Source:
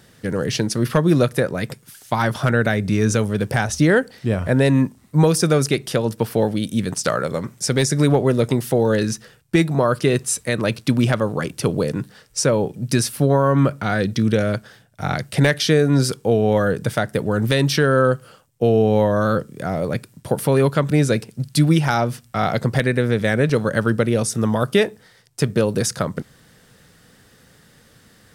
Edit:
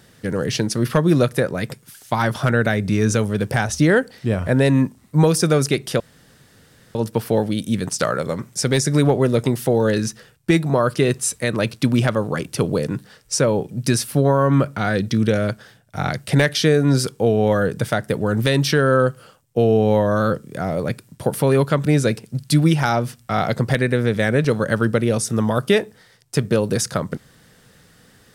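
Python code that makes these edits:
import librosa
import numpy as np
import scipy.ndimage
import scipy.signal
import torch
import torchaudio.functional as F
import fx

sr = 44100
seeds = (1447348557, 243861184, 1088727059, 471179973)

y = fx.edit(x, sr, fx.insert_room_tone(at_s=6.0, length_s=0.95), tone=tone)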